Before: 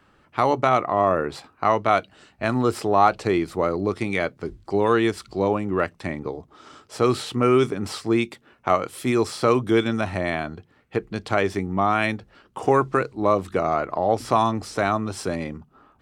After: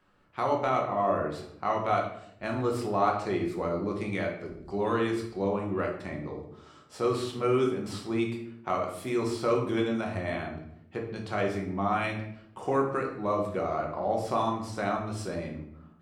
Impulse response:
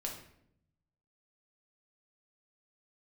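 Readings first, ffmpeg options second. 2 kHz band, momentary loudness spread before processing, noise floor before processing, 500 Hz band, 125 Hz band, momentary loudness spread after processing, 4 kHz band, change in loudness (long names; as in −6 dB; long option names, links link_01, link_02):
−8.5 dB, 11 LU, −60 dBFS, −7.0 dB, −6.0 dB, 11 LU, −8.5 dB, −7.5 dB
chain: -filter_complex "[1:a]atrim=start_sample=2205[link_01];[0:a][link_01]afir=irnorm=-1:irlink=0,volume=-8dB"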